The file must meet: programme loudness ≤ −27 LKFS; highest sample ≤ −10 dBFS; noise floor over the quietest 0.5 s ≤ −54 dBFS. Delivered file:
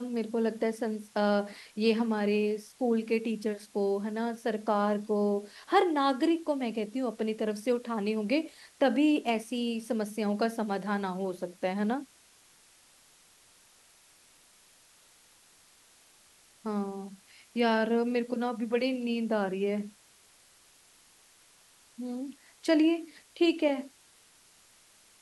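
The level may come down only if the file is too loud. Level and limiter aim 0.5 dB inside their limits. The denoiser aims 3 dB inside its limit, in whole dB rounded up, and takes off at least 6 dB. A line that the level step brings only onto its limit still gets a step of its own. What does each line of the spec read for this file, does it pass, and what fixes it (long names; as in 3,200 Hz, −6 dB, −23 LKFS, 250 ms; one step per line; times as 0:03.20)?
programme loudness −30.0 LKFS: in spec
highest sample −12.0 dBFS: in spec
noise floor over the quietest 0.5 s −61 dBFS: in spec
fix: no processing needed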